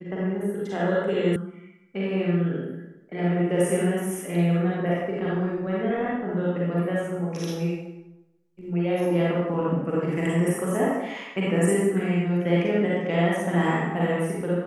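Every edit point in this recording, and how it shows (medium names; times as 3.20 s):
1.36 s: sound stops dead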